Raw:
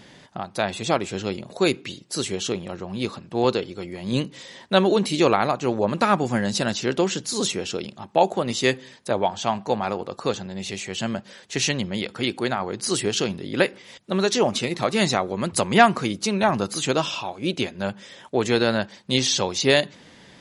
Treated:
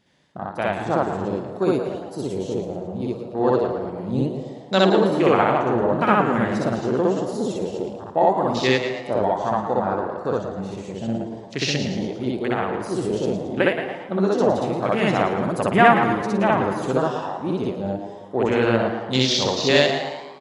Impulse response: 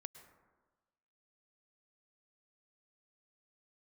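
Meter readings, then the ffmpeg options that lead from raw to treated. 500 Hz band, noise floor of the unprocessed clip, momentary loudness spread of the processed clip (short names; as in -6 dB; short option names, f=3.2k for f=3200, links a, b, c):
+3.0 dB, -49 dBFS, 11 LU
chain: -filter_complex "[0:a]afwtdn=0.0447,asplit=6[a][b][c][d][e][f];[b]adelay=112,afreqshift=110,volume=-10dB[g];[c]adelay=224,afreqshift=220,volume=-16.6dB[h];[d]adelay=336,afreqshift=330,volume=-23.1dB[i];[e]adelay=448,afreqshift=440,volume=-29.7dB[j];[f]adelay=560,afreqshift=550,volume=-36.2dB[k];[a][g][h][i][j][k]amix=inputs=6:normalize=0,asplit=2[l][m];[1:a]atrim=start_sample=2205,adelay=62[n];[m][n]afir=irnorm=-1:irlink=0,volume=7.5dB[o];[l][o]amix=inputs=2:normalize=0,volume=-2dB"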